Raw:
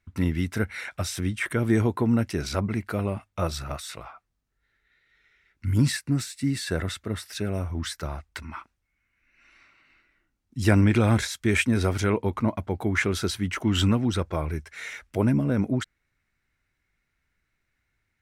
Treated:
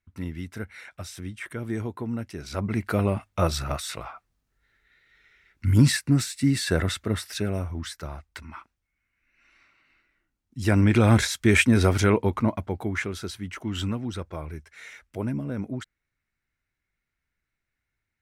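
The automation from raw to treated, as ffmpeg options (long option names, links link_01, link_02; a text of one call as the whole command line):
ffmpeg -i in.wav -af "volume=11.5dB,afade=type=in:start_time=2.46:duration=0.45:silence=0.237137,afade=type=out:start_time=7.14:duration=0.7:silence=0.421697,afade=type=in:start_time=10.63:duration=0.58:silence=0.421697,afade=type=out:start_time=12.02:duration=1.11:silence=0.281838" out.wav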